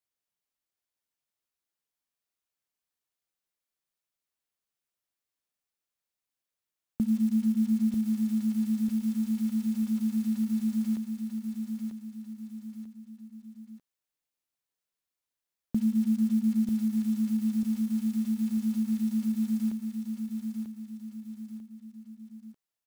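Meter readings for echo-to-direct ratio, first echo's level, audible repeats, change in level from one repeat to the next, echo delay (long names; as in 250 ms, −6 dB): −5.0 dB, −6.0 dB, 3, −7.5 dB, 943 ms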